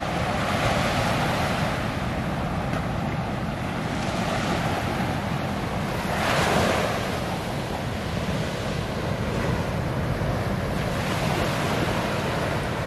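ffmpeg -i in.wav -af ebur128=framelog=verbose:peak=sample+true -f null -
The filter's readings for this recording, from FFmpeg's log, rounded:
Integrated loudness:
  I:         -25.6 LUFS
  Threshold: -35.6 LUFS
Loudness range:
  LRA:         2.2 LU
  Threshold: -45.9 LUFS
  LRA low:   -27.0 LUFS
  LRA high:  -24.8 LUFS
Sample peak:
  Peak:      -10.2 dBFS
True peak:
  Peak:      -10.1 dBFS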